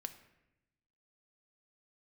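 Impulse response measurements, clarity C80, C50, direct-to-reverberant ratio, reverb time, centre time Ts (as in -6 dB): 14.5 dB, 12.0 dB, 8.0 dB, 0.90 s, 8 ms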